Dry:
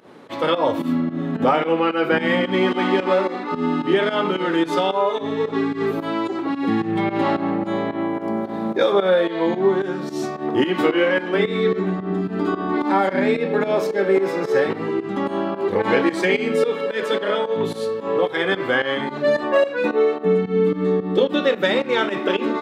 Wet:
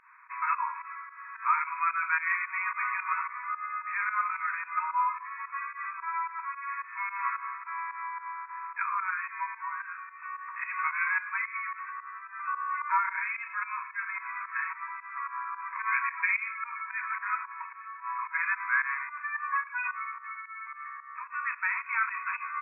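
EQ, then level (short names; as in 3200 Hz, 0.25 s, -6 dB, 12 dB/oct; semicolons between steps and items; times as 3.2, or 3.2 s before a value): brick-wall FIR band-pass 930–2600 Hz; dynamic EQ 1800 Hz, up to -3 dB, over -40 dBFS, Q 3.5; -2.0 dB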